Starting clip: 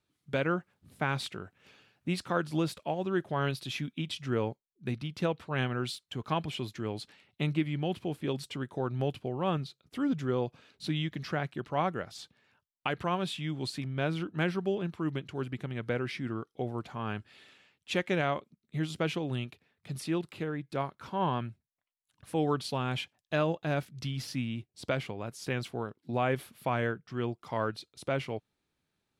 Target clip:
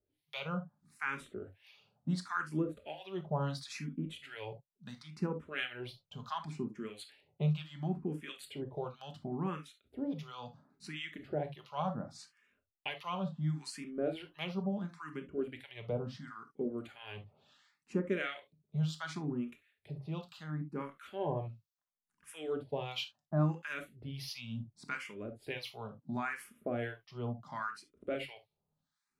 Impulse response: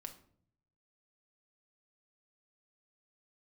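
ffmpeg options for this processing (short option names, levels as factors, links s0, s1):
-filter_complex "[0:a]acrossover=split=1000[s0][s1];[s0]aeval=exprs='val(0)*(1-1/2+1/2*cos(2*PI*1.5*n/s))':c=same[s2];[s1]aeval=exprs='val(0)*(1-1/2-1/2*cos(2*PI*1.5*n/s))':c=same[s3];[s2][s3]amix=inputs=2:normalize=0[s4];[1:a]atrim=start_sample=2205,atrim=end_sample=3528[s5];[s4][s5]afir=irnorm=-1:irlink=0,asplit=2[s6][s7];[s7]afreqshift=0.71[s8];[s6][s8]amix=inputs=2:normalize=1,volume=2.11"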